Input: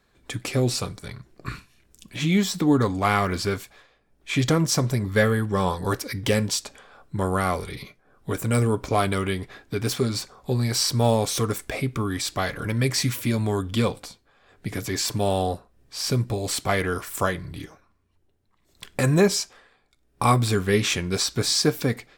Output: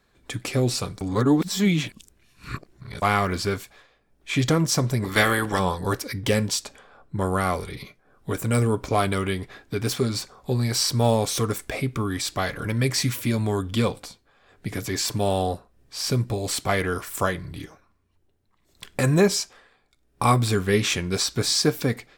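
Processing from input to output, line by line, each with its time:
0:01.01–0:03.02: reverse
0:05.02–0:05.58: ceiling on every frequency bin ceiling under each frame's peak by 19 dB
0:06.12–0:07.80: one half of a high-frequency compander decoder only

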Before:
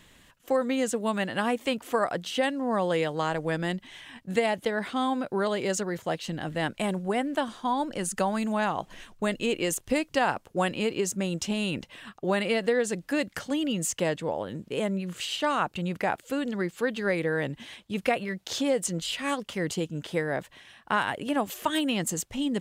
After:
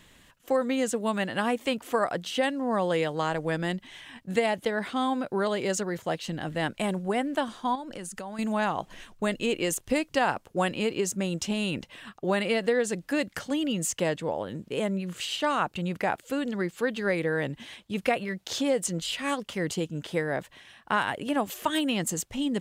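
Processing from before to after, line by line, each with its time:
0:07.75–0:08.39: downward compressor 5 to 1, threshold −35 dBFS

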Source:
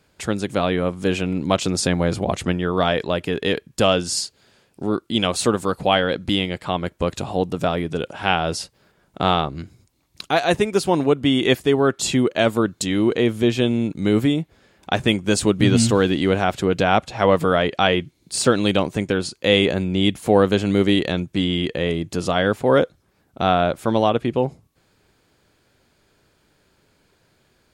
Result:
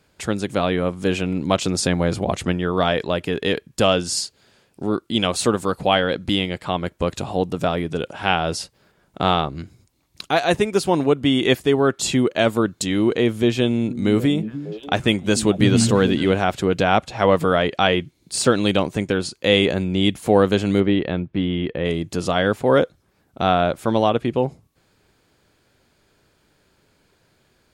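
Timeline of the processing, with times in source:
0:13.53–0:16.32: echo through a band-pass that steps 297 ms, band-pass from 190 Hz, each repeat 1.4 octaves, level −7.5 dB
0:20.80–0:21.85: high-frequency loss of the air 380 metres

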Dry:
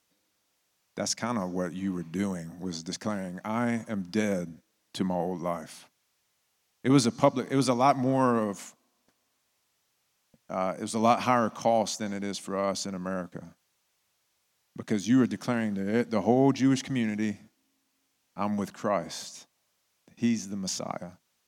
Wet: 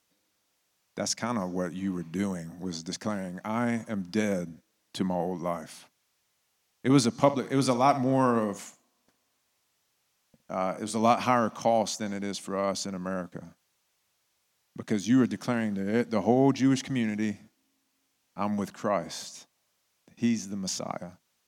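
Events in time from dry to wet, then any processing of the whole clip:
0:07.20–0:10.96: flutter between parallel walls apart 10.3 metres, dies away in 0.25 s

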